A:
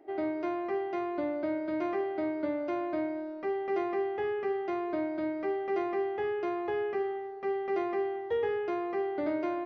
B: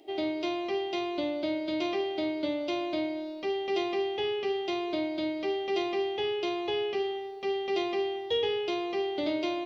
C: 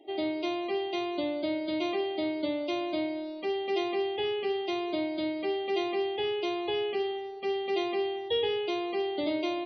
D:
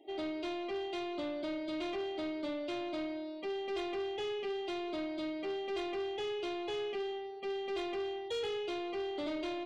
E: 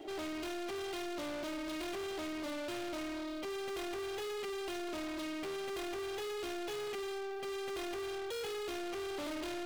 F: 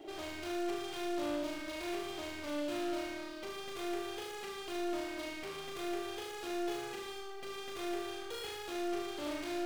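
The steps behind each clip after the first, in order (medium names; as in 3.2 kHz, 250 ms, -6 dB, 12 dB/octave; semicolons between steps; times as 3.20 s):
resonant high shelf 2.3 kHz +12.5 dB, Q 3; trim +1.5 dB
loudest bins only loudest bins 64
saturation -28.5 dBFS, distortion -14 dB; trim -4 dB
waveshaping leveller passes 5; trim -6 dB
flutter echo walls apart 6.4 m, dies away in 0.76 s; trim -3 dB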